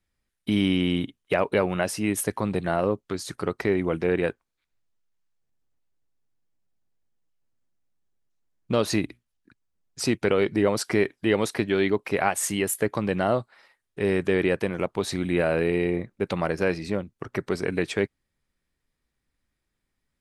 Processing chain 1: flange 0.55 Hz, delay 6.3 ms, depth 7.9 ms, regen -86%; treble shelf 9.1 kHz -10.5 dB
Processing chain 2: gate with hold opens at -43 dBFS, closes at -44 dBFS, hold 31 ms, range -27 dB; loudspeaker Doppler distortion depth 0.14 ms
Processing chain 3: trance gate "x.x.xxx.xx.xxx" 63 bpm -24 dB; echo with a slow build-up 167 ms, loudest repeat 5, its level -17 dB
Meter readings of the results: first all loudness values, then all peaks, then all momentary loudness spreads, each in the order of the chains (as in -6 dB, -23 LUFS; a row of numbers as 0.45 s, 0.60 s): -30.5 LUFS, -25.5 LUFS, -27.5 LUFS; -10.5 dBFS, -5.5 dBFS, -6.0 dBFS; 7 LU, 7 LU, 15 LU